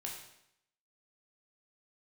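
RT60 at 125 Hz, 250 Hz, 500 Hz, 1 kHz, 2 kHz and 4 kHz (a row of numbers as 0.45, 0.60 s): 0.80, 0.80, 0.75, 0.75, 0.75, 0.75 s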